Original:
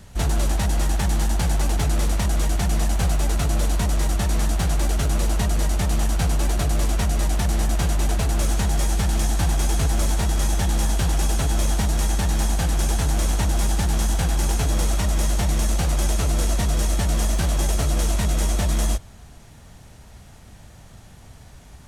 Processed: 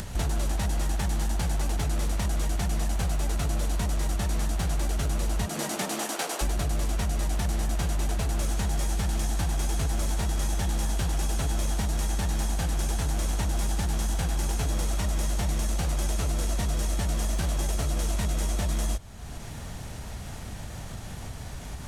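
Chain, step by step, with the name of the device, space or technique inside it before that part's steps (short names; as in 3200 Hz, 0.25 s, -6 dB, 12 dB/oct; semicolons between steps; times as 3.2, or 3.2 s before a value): 5.45–6.41 HPF 140 Hz -> 400 Hz 24 dB/oct; upward and downward compression (upward compressor, threshold -28 dBFS; compressor 5:1, threshold -24 dBFS, peak gain reduction 7.5 dB)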